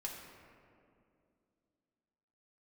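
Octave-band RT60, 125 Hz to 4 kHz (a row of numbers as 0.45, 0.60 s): 2.8, 3.3, 2.8, 2.2, 1.8, 1.2 s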